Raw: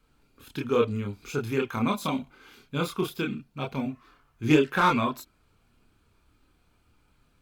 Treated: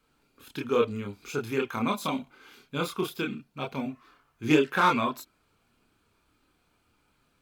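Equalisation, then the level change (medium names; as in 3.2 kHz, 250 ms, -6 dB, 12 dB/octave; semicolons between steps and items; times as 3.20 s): bass shelf 120 Hz -12 dB; 0.0 dB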